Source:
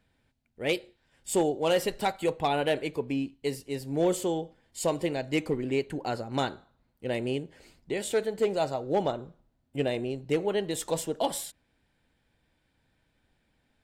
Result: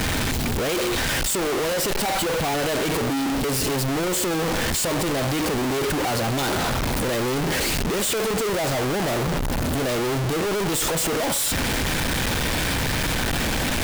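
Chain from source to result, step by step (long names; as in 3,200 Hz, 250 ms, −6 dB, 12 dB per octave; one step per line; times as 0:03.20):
sign of each sample alone
level +8 dB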